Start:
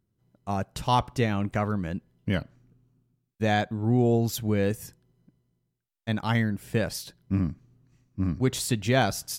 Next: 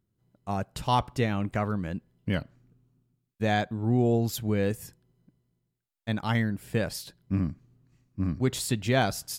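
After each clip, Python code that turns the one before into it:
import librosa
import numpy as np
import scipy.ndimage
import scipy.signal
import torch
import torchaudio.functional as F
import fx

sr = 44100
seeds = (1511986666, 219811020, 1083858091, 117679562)

y = fx.notch(x, sr, hz=5900.0, q=16.0)
y = F.gain(torch.from_numpy(y), -1.5).numpy()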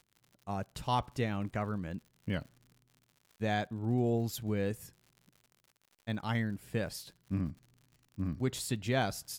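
y = fx.dmg_crackle(x, sr, seeds[0], per_s=93.0, level_db=-42.0)
y = F.gain(torch.from_numpy(y), -6.5).numpy()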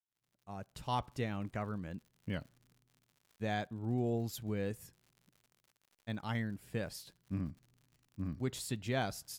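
y = fx.fade_in_head(x, sr, length_s=0.96)
y = F.gain(torch.from_numpy(y), -4.0).numpy()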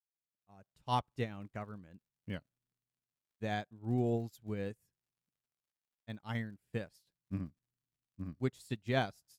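y = fx.upward_expand(x, sr, threshold_db=-49.0, expansion=2.5)
y = F.gain(torch.from_numpy(y), 4.0).numpy()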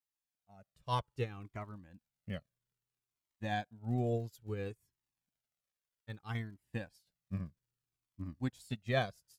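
y = fx.comb_cascade(x, sr, direction='falling', hz=0.61)
y = F.gain(torch.from_numpy(y), 4.0).numpy()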